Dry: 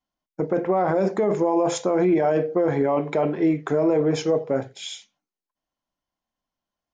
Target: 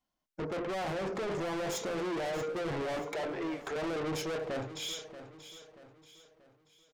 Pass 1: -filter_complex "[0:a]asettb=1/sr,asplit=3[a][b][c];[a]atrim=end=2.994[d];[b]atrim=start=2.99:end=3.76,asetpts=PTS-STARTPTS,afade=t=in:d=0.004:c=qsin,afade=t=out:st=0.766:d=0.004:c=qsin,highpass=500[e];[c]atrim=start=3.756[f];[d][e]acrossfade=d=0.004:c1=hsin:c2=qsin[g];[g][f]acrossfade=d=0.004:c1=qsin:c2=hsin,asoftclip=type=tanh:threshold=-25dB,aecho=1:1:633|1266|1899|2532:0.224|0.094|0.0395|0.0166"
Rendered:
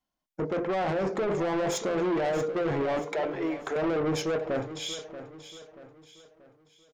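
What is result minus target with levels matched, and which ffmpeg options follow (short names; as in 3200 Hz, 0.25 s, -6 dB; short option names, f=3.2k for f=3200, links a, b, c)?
soft clip: distortion -4 dB
-filter_complex "[0:a]asettb=1/sr,asplit=3[a][b][c];[a]atrim=end=2.994[d];[b]atrim=start=2.99:end=3.76,asetpts=PTS-STARTPTS,afade=t=in:d=0.004:c=qsin,afade=t=out:st=0.766:d=0.004:c=qsin,highpass=500[e];[c]atrim=start=3.756[f];[d][e]acrossfade=d=0.004:c1=hsin:c2=qsin[g];[g][f]acrossfade=d=0.004:c1=qsin:c2=hsin,asoftclip=type=tanh:threshold=-33.5dB,aecho=1:1:633|1266|1899|2532:0.224|0.094|0.0395|0.0166"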